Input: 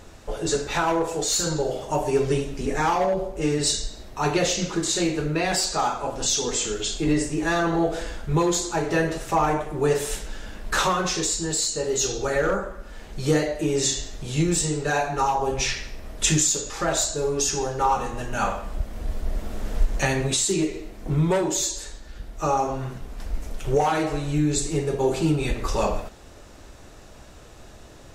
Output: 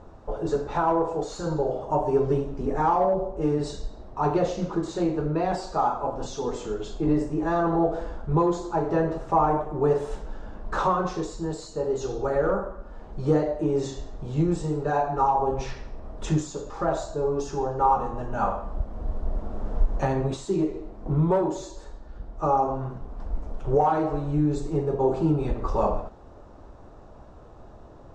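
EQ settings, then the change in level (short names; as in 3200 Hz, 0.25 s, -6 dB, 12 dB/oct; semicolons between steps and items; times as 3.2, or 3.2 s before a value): air absorption 100 m; resonant high shelf 1500 Hz -11.5 dB, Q 1.5; -1.0 dB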